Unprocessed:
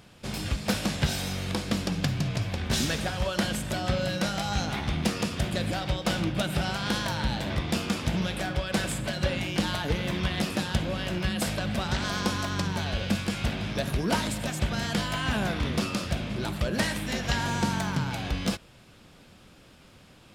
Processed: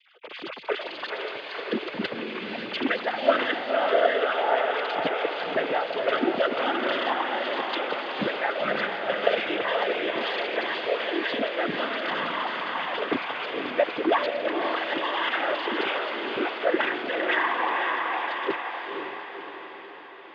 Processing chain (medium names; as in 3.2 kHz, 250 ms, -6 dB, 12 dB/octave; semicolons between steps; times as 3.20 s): formants replaced by sine waves; noise-vocoded speech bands 16; echo that smears into a reverb 518 ms, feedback 56%, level -4 dB